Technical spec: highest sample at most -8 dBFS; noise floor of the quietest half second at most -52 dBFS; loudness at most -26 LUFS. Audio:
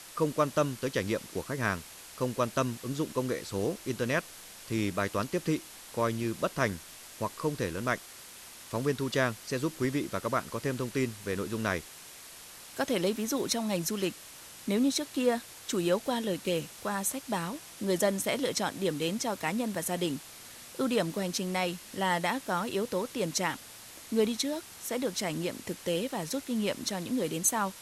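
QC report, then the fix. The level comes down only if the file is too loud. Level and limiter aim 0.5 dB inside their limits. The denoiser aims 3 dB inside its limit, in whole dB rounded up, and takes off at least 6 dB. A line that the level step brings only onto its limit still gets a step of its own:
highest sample -12.5 dBFS: pass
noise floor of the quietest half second -49 dBFS: fail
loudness -31.5 LUFS: pass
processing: noise reduction 6 dB, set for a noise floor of -49 dBFS

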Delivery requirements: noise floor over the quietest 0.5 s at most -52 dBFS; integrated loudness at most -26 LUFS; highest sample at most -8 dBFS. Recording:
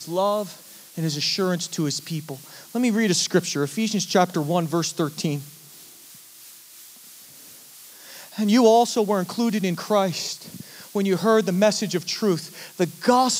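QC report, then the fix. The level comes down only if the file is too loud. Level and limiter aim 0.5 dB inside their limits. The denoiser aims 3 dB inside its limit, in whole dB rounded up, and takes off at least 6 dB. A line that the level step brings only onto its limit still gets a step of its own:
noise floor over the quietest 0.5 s -46 dBFS: fail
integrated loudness -22.5 LUFS: fail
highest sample -5.0 dBFS: fail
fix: noise reduction 6 dB, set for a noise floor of -46 dBFS; trim -4 dB

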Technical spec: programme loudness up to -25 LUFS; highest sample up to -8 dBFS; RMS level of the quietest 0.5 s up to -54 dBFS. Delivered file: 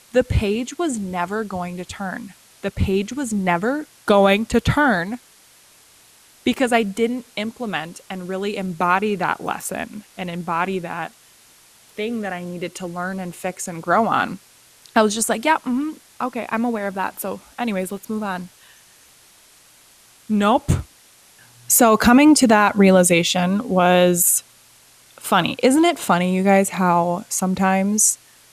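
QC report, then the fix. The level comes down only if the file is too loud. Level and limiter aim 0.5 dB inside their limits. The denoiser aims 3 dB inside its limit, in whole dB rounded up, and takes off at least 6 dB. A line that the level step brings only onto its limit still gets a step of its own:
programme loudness -19.5 LUFS: fail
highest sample -4.5 dBFS: fail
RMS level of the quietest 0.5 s -51 dBFS: fail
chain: trim -6 dB

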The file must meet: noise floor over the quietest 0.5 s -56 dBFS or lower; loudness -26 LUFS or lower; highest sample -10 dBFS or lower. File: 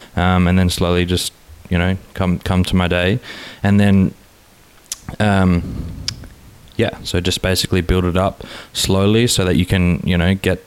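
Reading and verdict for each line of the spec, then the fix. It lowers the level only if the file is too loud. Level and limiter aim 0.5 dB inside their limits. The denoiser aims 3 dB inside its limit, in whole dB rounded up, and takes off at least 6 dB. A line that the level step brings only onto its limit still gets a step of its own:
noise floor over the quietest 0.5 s -48 dBFS: fail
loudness -17.0 LUFS: fail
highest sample -5.0 dBFS: fail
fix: trim -9.5 dB

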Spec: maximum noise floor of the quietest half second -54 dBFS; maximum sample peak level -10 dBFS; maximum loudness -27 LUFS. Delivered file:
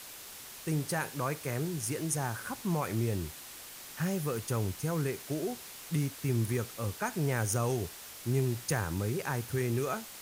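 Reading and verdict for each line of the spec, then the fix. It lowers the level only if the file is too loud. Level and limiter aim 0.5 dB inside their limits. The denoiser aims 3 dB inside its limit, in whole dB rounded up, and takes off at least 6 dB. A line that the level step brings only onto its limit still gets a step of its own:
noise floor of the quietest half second -47 dBFS: fail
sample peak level -17.0 dBFS: pass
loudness -33.5 LUFS: pass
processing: noise reduction 10 dB, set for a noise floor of -47 dBFS

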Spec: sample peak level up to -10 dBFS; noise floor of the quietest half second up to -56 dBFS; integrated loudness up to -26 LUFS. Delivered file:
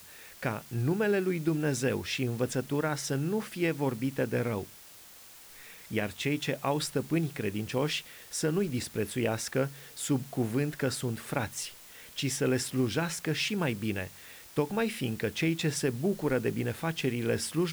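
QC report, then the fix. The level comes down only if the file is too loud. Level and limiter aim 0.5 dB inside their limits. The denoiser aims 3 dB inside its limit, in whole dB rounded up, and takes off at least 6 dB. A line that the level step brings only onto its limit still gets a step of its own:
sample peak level -15.5 dBFS: pass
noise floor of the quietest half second -52 dBFS: fail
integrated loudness -31.0 LUFS: pass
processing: noise reduction 7 dB, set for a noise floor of -52 dBFS

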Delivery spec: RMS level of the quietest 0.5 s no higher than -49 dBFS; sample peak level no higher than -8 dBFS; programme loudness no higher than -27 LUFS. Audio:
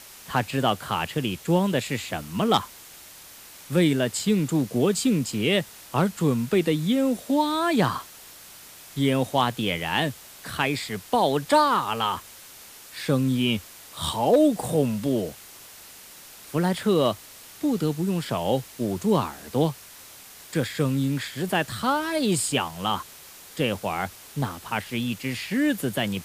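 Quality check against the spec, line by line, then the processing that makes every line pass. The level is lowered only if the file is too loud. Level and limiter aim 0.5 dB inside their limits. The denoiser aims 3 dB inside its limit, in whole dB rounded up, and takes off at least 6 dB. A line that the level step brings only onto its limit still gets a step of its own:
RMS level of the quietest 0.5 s -46 dBFS: fail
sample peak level -7.0 dBFS: fail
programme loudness -25.0 LUFS: fail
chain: noise reduction 6 dB, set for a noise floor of -46 dBFS; trim -2.5 dB

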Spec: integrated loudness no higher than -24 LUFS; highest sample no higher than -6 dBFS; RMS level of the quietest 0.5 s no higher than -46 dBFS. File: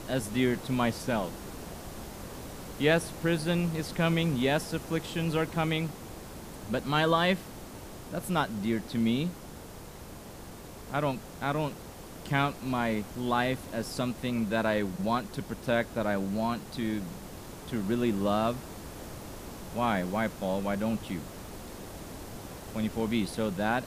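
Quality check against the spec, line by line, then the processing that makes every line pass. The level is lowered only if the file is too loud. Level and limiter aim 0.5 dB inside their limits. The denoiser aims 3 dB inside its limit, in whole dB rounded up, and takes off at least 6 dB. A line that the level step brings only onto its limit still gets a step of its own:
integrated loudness -30.5 LUFS: pass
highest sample -12.0 dBFS: pass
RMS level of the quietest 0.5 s -45 dBFS: fail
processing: noise reduction 6 dB, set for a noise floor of -45 dBFS

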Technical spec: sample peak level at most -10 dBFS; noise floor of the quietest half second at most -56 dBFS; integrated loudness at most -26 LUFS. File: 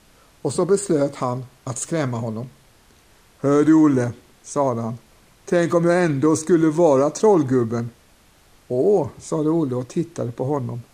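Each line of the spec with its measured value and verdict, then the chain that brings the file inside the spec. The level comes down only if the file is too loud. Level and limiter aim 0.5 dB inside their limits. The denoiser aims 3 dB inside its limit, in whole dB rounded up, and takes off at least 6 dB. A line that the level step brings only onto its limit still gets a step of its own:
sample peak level -4.5 dBFS: fail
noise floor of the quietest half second -54 dBFS: fail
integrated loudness -20.5 LUFS: fail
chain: trim -6 dB

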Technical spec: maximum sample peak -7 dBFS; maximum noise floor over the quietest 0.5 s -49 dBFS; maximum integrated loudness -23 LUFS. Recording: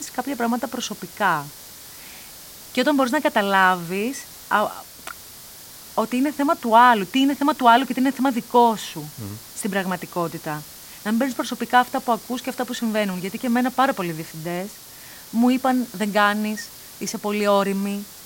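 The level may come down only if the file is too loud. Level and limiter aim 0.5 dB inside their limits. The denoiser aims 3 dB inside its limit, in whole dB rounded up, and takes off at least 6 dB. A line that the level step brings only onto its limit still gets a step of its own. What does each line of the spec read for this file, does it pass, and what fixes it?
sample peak -3.5 dBFS: fail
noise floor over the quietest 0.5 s -42 dBFS: fail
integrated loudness -21.5 LUFS: fail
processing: noise reduction 8 dB, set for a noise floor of -42 dBFS; trim -2 dB; peak limiter -7.5 dBFS

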